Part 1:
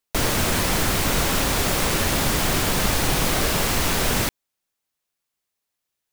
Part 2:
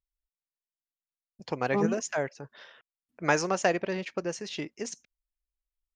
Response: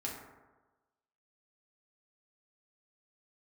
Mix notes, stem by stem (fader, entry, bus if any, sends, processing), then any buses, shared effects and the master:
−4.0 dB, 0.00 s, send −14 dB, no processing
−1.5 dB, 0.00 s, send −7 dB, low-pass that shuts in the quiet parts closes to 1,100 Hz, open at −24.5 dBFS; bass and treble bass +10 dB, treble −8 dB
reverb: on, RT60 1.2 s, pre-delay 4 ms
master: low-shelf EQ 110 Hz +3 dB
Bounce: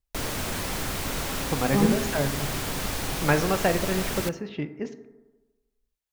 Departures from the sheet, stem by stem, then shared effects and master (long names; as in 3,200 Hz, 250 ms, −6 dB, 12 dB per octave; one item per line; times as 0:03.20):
stem 1 −4.0 dB → −10.0 dB
master: missing low-shelf EQ 110 Hz +3 dB